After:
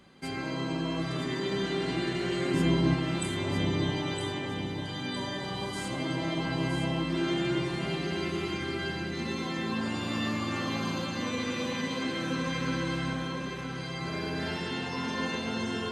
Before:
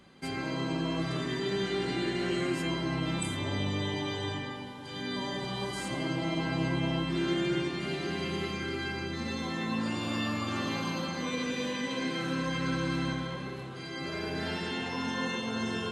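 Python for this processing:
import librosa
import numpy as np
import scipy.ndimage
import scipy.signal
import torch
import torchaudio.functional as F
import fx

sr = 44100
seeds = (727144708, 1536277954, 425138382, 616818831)

p1 = fx.low_shelf(x, sr, hz=390.0, db=10.5, at=(2.54, 2.94))
y = p1 + fx.echo_feedback(p1, sr, ms=962, feedback_pct=40, wet_db=-7.0, dry=0)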